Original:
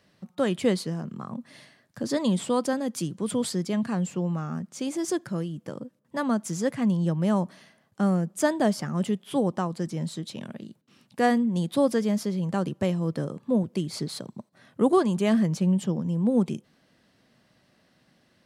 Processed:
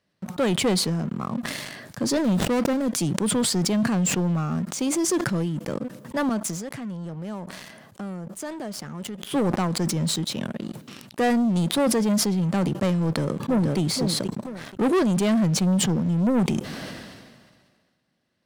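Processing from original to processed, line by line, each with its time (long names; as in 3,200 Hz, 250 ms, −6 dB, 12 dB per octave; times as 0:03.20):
0:02.18–0:02.88: running median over 41 samples
0:06.29–0:09.29: downward compressor 3 to 1, threshold −43 dBFS
0:13.00–0:13.79: delay throw 480 ms, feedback 20%, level −9.5 dB
whole clip: leveller curve on the samples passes 3; level that may fall only so fast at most 34 dB per second; level −5 dB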